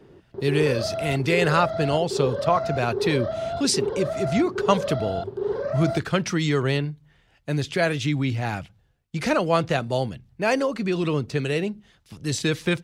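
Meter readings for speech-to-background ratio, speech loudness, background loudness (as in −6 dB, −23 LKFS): 4.5 dB, −24.5 LKFS, −29.0 LKFS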